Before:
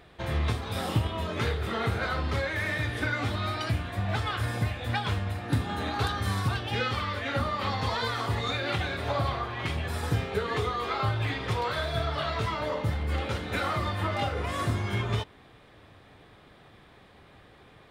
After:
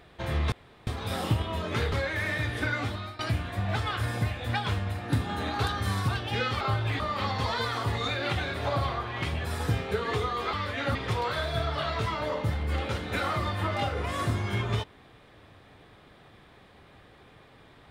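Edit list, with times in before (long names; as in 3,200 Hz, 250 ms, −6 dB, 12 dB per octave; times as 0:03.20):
0:00.52: splice in room tone 0.35 s
0:01.57–0:02.32: remove
0:03.17–0:03.59: fade out, to −16.5 dB
0:07.01–0:07.43: swap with 0:10.96–0:11.35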